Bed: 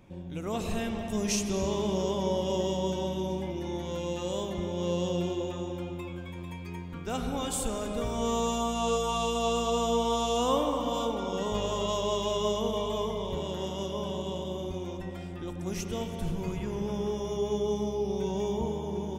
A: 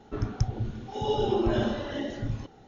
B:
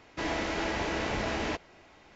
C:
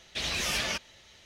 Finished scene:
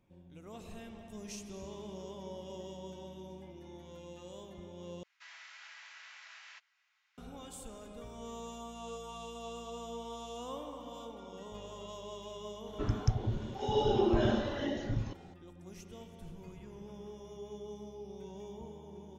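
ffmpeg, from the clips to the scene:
-filter_complex "[0:a]volume=-16dB[a];[2:a]highpass=f=1.3k:w=0.5412,highpass=f=1.3k:w=1.3066[b];[a]asplit=2[c][d];[c]atrim=end=5.034[e];[b]atrim=end=2.15,asetpts=PTS-STARTPTS,volume=-15.5dB[f];[d]atrim=start=7.176[g];[1:a]atrim=end=2.67,asetpts=PTS-STARTPTS,volume=-2.5dB,afade=t=in:d=0.004:c=hsin,afade=t=out:st=2.666:d=0.004:c=hsin,adelay=12670[h];[e][f]acrossfade=d=0.004:c1=hsin:c2=hsin[i];[i][g]acrossfade=d=0.004:c1=hsin:c2=hsin[j];[j][h]amix=inputs=2:normalize=0"

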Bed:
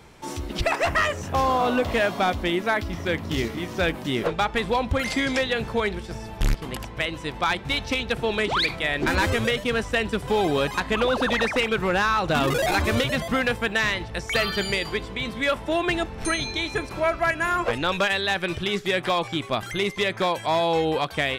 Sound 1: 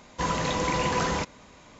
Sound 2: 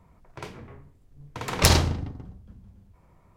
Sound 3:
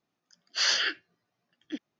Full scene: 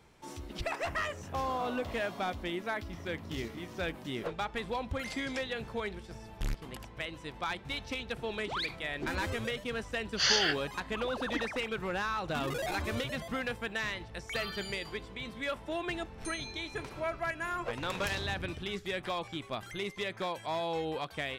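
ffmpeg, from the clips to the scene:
-filter_complex "[0:a]volume=-12dB[a];[2:a]acompressor=threshold=-27dB:ratio=6:attack=3.2:release=140:knee=1:detection=peak[b];[3:a]atrim=end=1.99,asetpts=PTS-STARTPTS,volume=-1.5dB,afade=t=in:d=0.004:c=hsin,afade=t=out:st=1.986:d=0.004:c=hsin,adelay=424242S[c];[b]atrim=end=3.36,asetpts=PTS-STARTPTS,volume=-8.5dB,afade=t=in:d=0.004:c=hsin,afade=t=out:st=3.356:d=0.004:c=hsin,adelay=16420[d];[a][c][d]amix=inputs=3:normalize=0"

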